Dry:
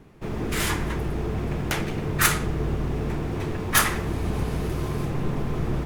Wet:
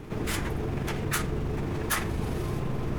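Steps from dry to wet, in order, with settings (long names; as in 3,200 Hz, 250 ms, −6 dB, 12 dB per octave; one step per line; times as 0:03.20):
time stretch by overlap-add 0.51×, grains 86 ms
envelope flattener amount 50%
level −7 dB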